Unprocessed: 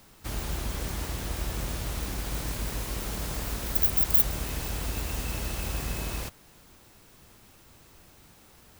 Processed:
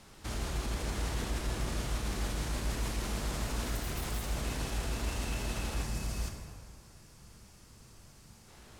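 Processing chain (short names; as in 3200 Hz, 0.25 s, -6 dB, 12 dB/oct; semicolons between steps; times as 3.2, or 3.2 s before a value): LPF 9500 Hz 12 dB/oct; limiter -28.5 dBFS, peak gain reduction 11 dB; spectral gain 5.83–8.48, 220–4300 Hz -6 dB; plate-style reverb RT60 2 s, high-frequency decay 0.6×, DRR 2 dB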